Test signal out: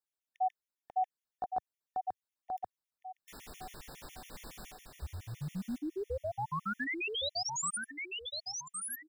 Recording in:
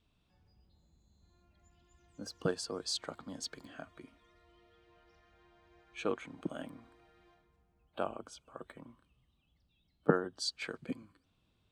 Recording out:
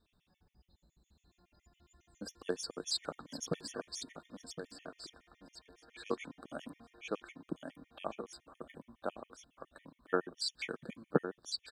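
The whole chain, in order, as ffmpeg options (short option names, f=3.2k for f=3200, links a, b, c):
-af "equalizer=f=100:t=o:w=0.5:g=-9,aecho=1:1:1062|2124|3186|4248:0.631|0.183|0.0531|0.0154,afftfilt=real='re*gt(sin(2*PI*7.2*pts/sr)*(1-2*mod(floor(b*sr/1024/1800),2)),0)':imag='im*gt(sin(2*PI*7.2*pts/sr)*(1-2*mod(floor(b*sr/1024/1800),2)),0)':win_size=1024:overlap=0.75,volume=2.5dB"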